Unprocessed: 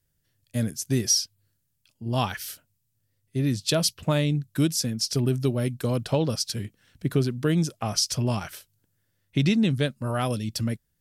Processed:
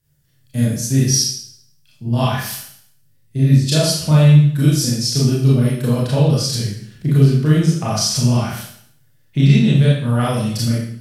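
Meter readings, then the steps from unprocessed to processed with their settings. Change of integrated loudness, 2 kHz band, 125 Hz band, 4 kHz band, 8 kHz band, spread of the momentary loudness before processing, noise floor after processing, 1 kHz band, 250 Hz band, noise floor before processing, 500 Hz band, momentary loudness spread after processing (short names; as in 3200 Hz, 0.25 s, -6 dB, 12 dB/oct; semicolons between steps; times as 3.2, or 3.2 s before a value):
+10.0 dB, +6.5 dB, +13.5 dB, +6.5 dB, +7.0 dB, 11 LU, -54 dBFS, +6.5 dB, +9.5 dB, -74 dBFS, +6.0 dB, 14 LU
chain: bell 140 Hz +14.5 dB 0.32 oct; in parallel at -0.5 dB: compressor, threshold -26 dBFS, peak gain reduction 16.5 dB; on the sum: Schroeder reverb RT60 0.64 s, combs from 26 ms, DRR -7.5 dB; gain -4.5 dB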